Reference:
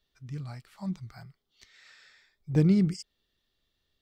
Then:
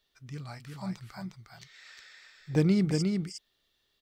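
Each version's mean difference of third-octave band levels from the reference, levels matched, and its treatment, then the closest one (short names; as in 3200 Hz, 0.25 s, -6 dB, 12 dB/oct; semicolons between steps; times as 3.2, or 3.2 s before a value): 5.0 dB: low shelf 290 Hz -9.5 dB; on a send: echo 0.358 s -4.5 dB; on the sum: gain +4 dB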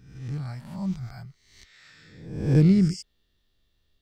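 4.0 dB: spectral swells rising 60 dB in 0.78 s; low shelf 150 Hz +9.5 dB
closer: second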